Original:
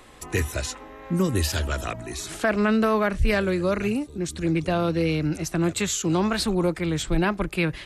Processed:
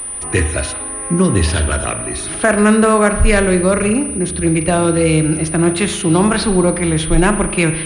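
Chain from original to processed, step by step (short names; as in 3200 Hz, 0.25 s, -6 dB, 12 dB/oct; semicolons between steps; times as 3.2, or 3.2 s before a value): spring tank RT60 1 s, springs 38 ms, chirp 25 ms, DRR 8 dB; pulse-width modulation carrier 9400 Hz; gain +9 dB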